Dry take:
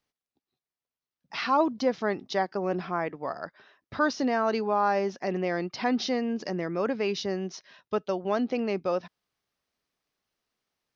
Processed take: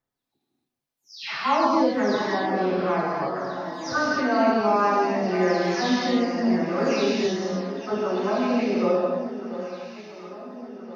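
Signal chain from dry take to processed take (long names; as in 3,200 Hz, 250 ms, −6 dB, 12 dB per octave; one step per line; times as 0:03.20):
every frequency bin delayed by itself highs early, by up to 370 ms
on a send: delay that swaps between a low-pass and a high-pass 687 ms, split 1,100 Hz, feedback 70%, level −10 dB
on the sum: reverb whose tail is shaped and stops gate 320 ms flat, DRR −4.5 dB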